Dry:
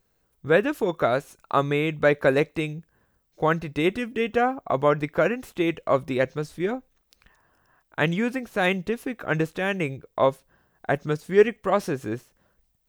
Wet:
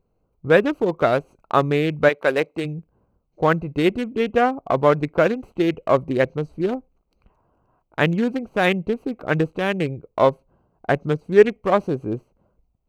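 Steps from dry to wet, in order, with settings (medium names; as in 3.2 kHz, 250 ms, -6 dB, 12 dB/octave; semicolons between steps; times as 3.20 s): local Wiener filter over 25 samples; 2.08–2.64 s: high-pass 1.1 kHz -> 280 Hz 6 dB/octave; trim +4.5 dB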